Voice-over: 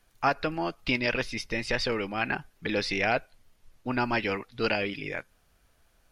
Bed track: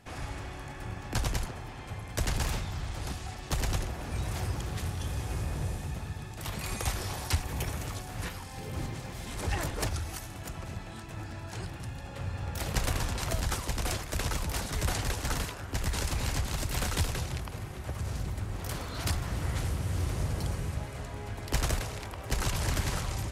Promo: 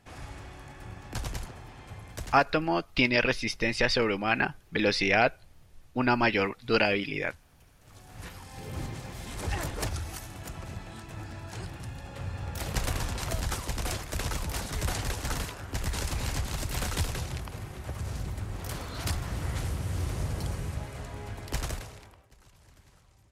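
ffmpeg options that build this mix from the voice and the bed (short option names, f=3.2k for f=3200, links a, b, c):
-filter_complex "[0:a]adelay=2100,volume=3dB[a];[1:a]volume=22.5dB,afade=t=out:st=2.08:d=0.37:silence=0.0707946,afade=t=in:st=7.8:d=0.92:silence=0.0446684,afade=t=out:st=21.28:d=1.02:silence=0.0421697[b];[a][b]amix=inputs=2:normalize=0"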